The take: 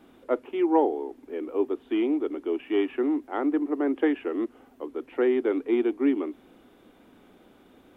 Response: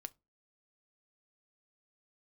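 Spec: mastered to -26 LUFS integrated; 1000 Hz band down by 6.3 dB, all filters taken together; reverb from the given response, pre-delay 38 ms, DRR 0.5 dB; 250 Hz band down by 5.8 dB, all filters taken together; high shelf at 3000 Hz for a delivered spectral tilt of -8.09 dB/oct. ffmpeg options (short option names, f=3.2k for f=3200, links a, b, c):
-filter_complex "[0:a]equalizer=f=250:t=o:g=-7.5,equalizer=f=1k:t=o:g=-8.5,highshelf=f=3k:g=5.5,asplit=2[a][b];[1:a]atrim=start_sample=2205,adelay=38[c];[b][c]afir=irnorm=-1:irlink=0,volume=4dB[d];[a][d]amix=inputs=2:normalize=0,volume=3dB"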